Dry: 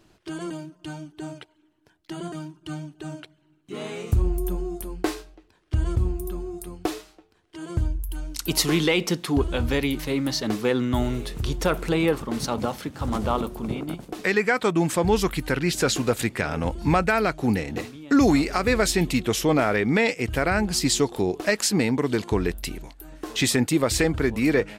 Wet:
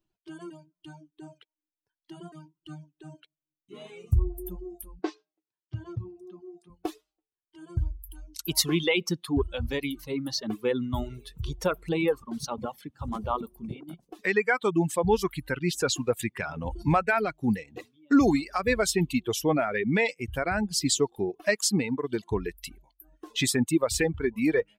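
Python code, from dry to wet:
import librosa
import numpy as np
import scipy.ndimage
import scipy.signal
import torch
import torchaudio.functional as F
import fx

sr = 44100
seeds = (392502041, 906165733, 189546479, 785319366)

y = fx.bin_expand(x, sr, power=1.5)
y = fx.dereverb_blind(y, sr, rt60_s=0.81)
y = fx.ellip_bandpass(y, sr, low_hz=120.0, high_hz=5800.0, order=3, stop_db=40, at=(4.99, 6.7))
y = fx.sustainer(y, sr, db_per_s=74.0, at=(16.36, 16.82), fade=0.02)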